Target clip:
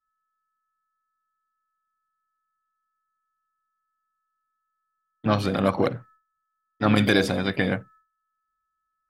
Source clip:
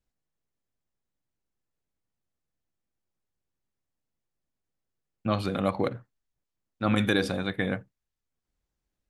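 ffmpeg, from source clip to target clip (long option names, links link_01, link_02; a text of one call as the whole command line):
ffmpeg -i in.wav -filter_complex "[0:a]aeval=exprs='val(0)+0.000891*sin(2*PI*1300*n/s)':channel_layout=same,asplit=2[link_01][link_02];[link_02]asetrate=58866,aresample=44100,atempo=0.749154,volume=-11dB[link_03];[link_01][link_03]amix=inputs=2:normalize=0,agate=range=-33dB:threshold=-51dB:ratio=3:detection=peak,volume=4.5dB" out.wav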